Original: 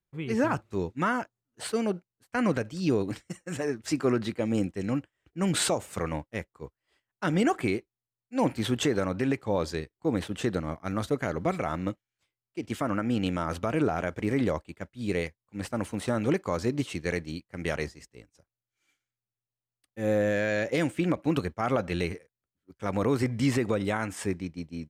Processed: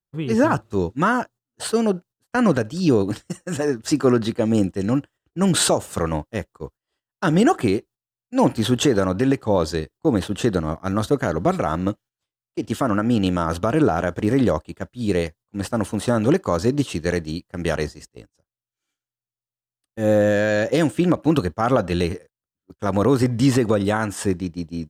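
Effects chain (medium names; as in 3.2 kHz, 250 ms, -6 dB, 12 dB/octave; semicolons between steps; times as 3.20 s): gate -51 dBFS, range -13 dB; peaking EQ 2.2 kHz -10.5 dB 0.35 oct; trim +8.5 dB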